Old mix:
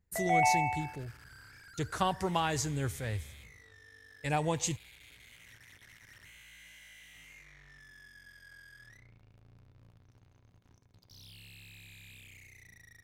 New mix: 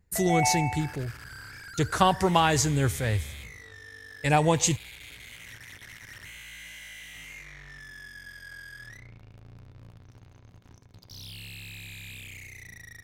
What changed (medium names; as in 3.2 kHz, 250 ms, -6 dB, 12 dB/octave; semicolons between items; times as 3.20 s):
speech +9.0 dB; second sound +10.5 dB